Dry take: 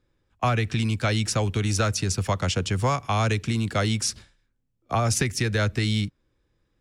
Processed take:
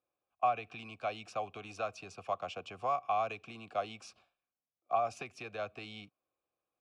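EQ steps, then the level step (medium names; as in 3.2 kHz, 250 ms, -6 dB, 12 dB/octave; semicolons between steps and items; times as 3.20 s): vowel filter a; 0.0 dB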